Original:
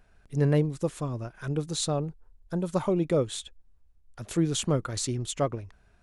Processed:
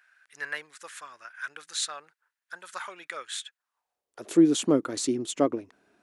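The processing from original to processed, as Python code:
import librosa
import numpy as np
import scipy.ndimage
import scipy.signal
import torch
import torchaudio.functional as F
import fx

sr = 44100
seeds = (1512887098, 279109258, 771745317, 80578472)

y = fx.filter_sweep_highpass(x, sr, from_hz=1600.0, to_hz=290.0, start_s=3.52, end_s=4.35, q=3.3)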